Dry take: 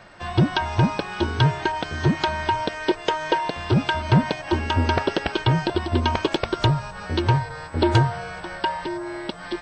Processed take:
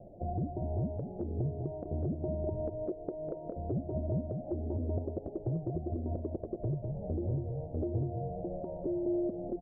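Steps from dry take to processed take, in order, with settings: steep low-pass 700 Hz 72 dB/octave; compression 6:1, threshold -30 dBFS, peak gain reduction 16 dB; peak limiter -26 dBFS, peak gain reduction 8 dB; on a send: delay 200 ms -6 dB

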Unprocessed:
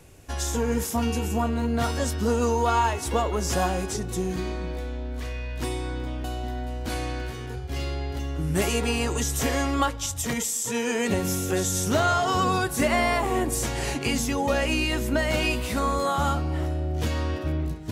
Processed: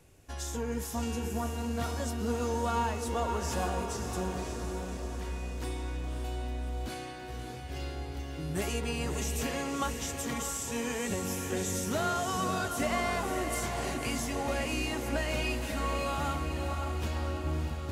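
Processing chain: echo that smears into a reverb 581 ms, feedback 59%, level -5.5 dB; trim -9 dB

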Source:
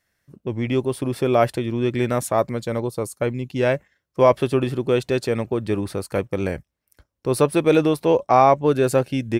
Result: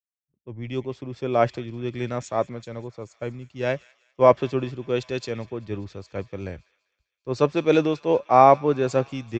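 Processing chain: resampled via 16 kHz; feedback echo behind a high-pass 197 ms, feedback 84%, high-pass 1.8 kHz, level -16 dB; three bands expanded up and down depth 100%; trim -5 dB

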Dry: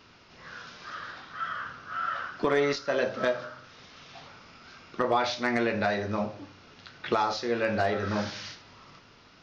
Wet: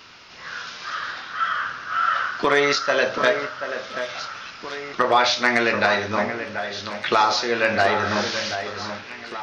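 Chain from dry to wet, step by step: tilt shelf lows -6 dB, about 640 Hz; echo whose repeats swap between lows and highs 733 ms, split 2.4 kHz, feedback 72%, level -9 dB; trim +6.5 dB

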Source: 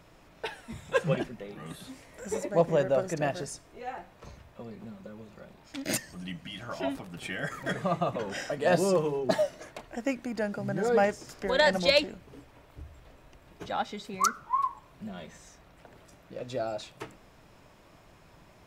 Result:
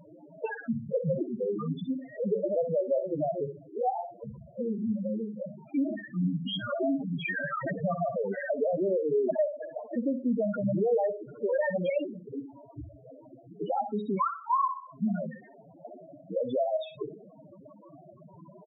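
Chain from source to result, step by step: high-pass 160 Hz 12 dB/octave; in parallel at +0.5 dB: peak limiter -18.5 dBFS, peak gain reduction 8 dB; on the sum: compression 8:1, threshold -30 dBFS, peak gain reduction 16 dB; waveshaping leveller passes 2; resampled via 8 kHz; on a send: flutter echo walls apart 10.6 m, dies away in 0.45 s; on the sum: loudest bins only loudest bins 4; trim +1.5 dB

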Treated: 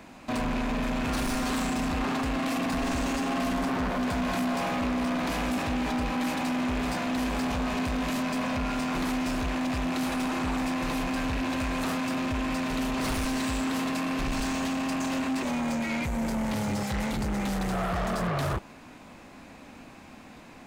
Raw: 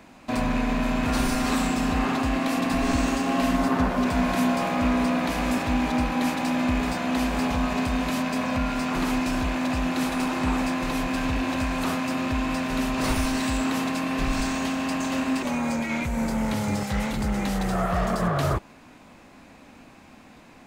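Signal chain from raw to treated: saturation -27 dBFS, distortion -10 dB; trim +1.5 dB

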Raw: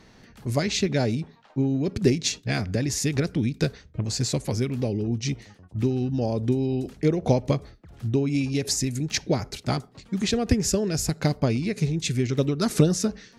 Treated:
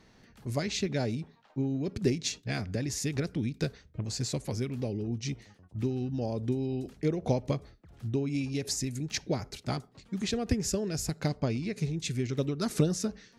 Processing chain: 11.28–11.76 s: low-pass 8.6 kHz 24 dB/octave; trim -7 dB

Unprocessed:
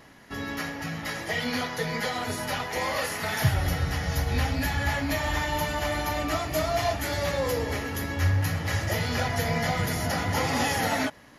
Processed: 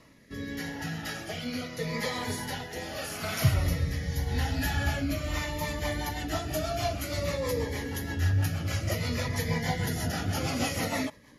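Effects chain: rotary cabinet horn 0.8 Hz, later 6.3 Hz, at 5.02 s; Shepard-style phaser falling 0.55 Hz

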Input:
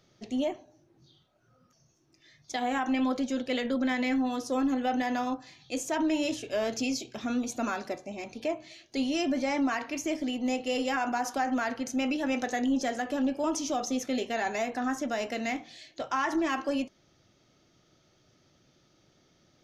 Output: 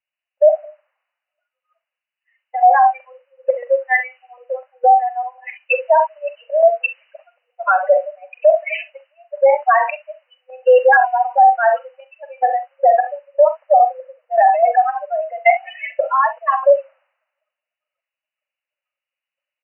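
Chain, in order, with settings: spectral contrast enhancement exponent 3.4; in parallel at +1 dB: compression 20:1, threshold -40 dBFS, peak gain reduction 16.5 dB; on the sum: trance gate "...x.xxx" 120 bpm -12 dB; word length cut 12-bit, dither triangular; brick-wall FIR band-pass 500–3000 Hz; on a send: early reflections 44 ms -12.5 dB, 66 ms -16 dB; on the sum: loudness maximiser +30 dB; three bands expanded up and down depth 100%; trim -6 dB

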